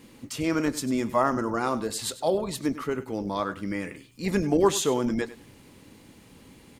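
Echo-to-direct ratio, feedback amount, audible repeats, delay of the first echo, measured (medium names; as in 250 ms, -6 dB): -16.0 dB, 18%, 2, 98 ms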